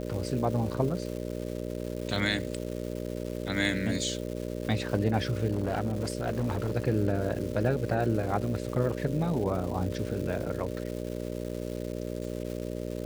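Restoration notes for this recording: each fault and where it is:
buzz 60 Hz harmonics 10 -35 dBFS
crackle 510/s -37 dBFS
5.52–6.72 clipped -23.5 dBFS

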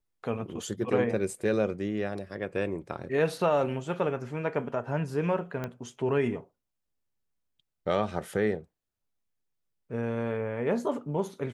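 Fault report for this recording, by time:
5.64 pop -20 dBFS

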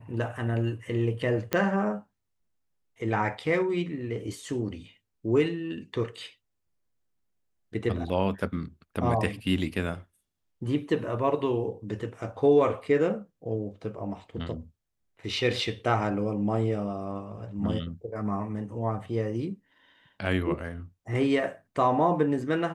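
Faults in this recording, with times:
1.53 pop -11 dBFS

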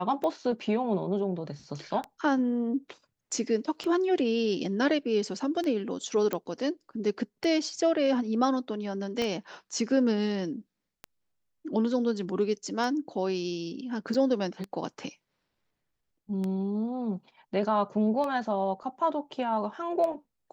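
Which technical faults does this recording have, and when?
tick 33 1/3 rpm -21 dBFS
6.33 pop -16 dBFS
9.22 pop -17 dBFS
14.14 gap 4.9 ms

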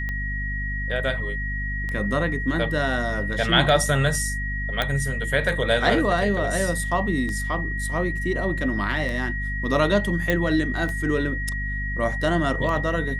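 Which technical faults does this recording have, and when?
hum 50 Hz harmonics 5 -29 dBFS
tick 33 1/3 rpm -18 dBFS
tone 1900 Hz -29 dBFS
4.82 pop -9 dBFS
10.3 pop -9 dBFS

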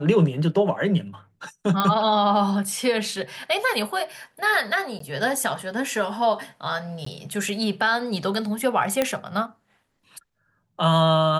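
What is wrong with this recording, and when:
1.8 pop -8 dBFS
4.99–5 gap
7.05–7.06 gap 14 ms
9.02 pop -7 dBFS

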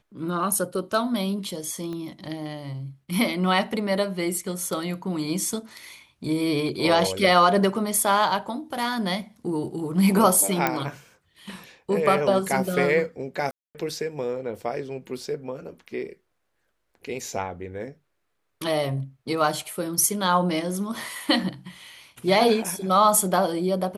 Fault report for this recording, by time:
1.93 pop -24 dBFS
10.67 pop -7 dBFS
13.51–13.75 gap 0.238 s

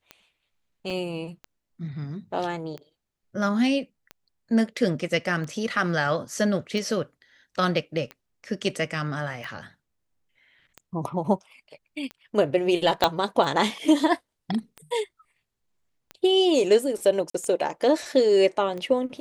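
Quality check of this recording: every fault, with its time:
tick 45 rpm -23 dBFS
0.9 gap 4.7 ms
13.04 pop -5 dBFS
17.3–17.34 gap 44 ms

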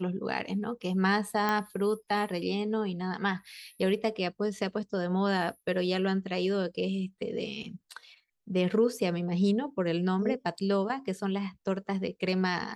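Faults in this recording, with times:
1.49 pop -15 dBFS

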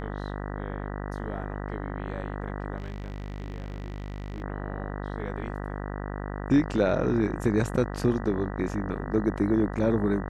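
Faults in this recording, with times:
buzz 50 Hz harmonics 39 -34 dBFS
2.77–4.42 clipped -31.5 dBFS

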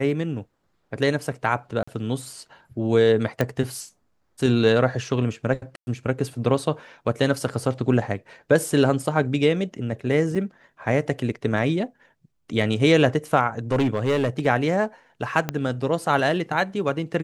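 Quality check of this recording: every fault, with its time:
1.83–1.88 gap 45 ms
3.41 pop -9 dBFS
5.76–5.87 gap 0.11 s
10.35 gap 4.7 ms
13.71–14.47 clipped -16.5 dBFS
15.49 pop -10 dBFS

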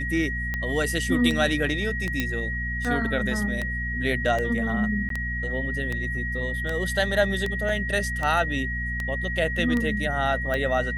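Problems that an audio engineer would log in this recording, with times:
hum 60 Hz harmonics 4 -31 dBFS
tick 78 rpm -15 dBFS
tone 1900 Hz -29 dBFS
2.2 pop -10 dBFS
5.09–5.1 gap 13 ms
7.69 gap 2.1 ms

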